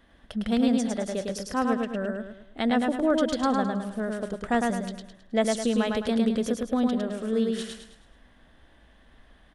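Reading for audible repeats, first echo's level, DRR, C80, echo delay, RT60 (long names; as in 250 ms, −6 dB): 5, −3.0 dB, no reverb audible, no reverb audible, 106 ms, no reverb audible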